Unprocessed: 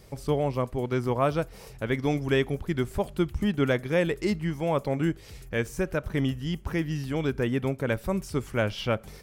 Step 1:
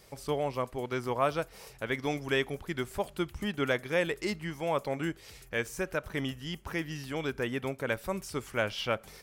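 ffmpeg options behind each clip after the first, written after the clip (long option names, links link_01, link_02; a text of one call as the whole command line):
ffmpeg -i in.wav -af "lowshelf=frequency=390:gain=-11.5" out.wav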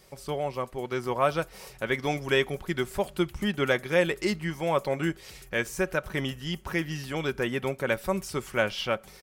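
ffmpeg -i in.wav -af "aecho=1:1:5.4:0.32,dynaudnorm=framelen=720:gausssize=3:maxgain=4dB" out.wav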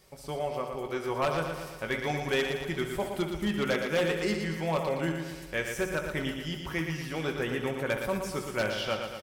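ffmpeg -i in.wav -filter_complex "[0:a]asplit=2[link_01][link_02];[link_02]aecho=0:1:19|67:0.335|0.299[link_03];[link_01][link_03]amix=inputs=2:normalize=0,aeval=exprs='0.15*(abs(mod(val(0)/0.15+3,4)-2)-1)':channel_layout=same,asplit=2[link_04][link_05];[link_05]aecho=0:1:116|232|348|464|580|696|812:0.501|0.281|0.157|0.088|0.0493|0.0276|0.0155[link_06];[link_04][link_06]amix=inputs=2:normalize=0,volume=-4dB" out.wav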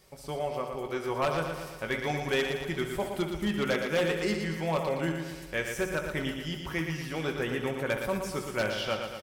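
ffmpeg -i in.wav -af anull out.wav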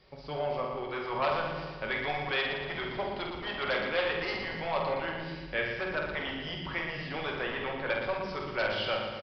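ffmpeg -i in.wav -filter_complex "[0:a]acrossover=split=450|2100[link_01][link_02][link_03];[link_01]aeval=exprs='0.0133*(abs(mod(val(0)/0.0133+3,4)-2)-1)':channel_layout=same[link_04];[link_04][link_02][link_03]amix=inputs=3:normalize=0,asplit=2[link_05][link_06];[link_06]adelay=48,volume=-6dB[link_07];[link_05][link_07]amix=inputs=2:normalize=0,aresample=11025,aresample=44100" out.wav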